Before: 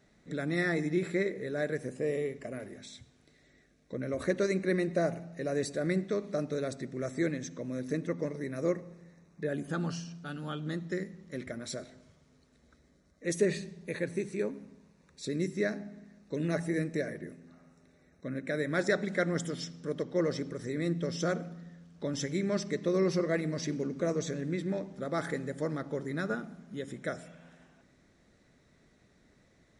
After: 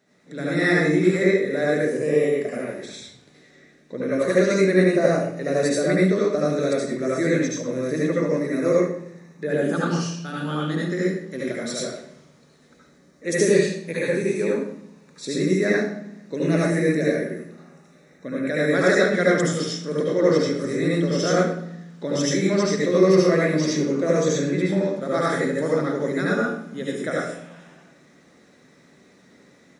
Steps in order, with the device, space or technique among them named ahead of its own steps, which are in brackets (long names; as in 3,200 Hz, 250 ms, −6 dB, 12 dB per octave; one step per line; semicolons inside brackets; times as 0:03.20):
far laptop microphone (convolution reverb RT60 0.55 s, pre-delay 67 ms, DRR −5.5 dB; high-pass filter 190 Hz 12 dB per octave; automatic gain control gain up to 6 dB)
0:02.63–0:04.08: high-shelf EQ 8,300 Hz −5 dB